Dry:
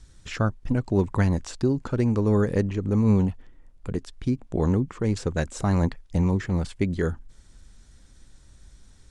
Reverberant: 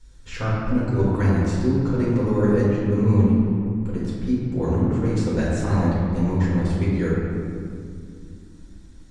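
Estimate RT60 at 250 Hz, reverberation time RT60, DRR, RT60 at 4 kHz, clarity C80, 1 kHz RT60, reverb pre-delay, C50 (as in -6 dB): 3.8 s, 2.4 s, -8.5 dB, 1.3 s, -0.5 dB, 2.1 s, 4 ms, -2.0 dB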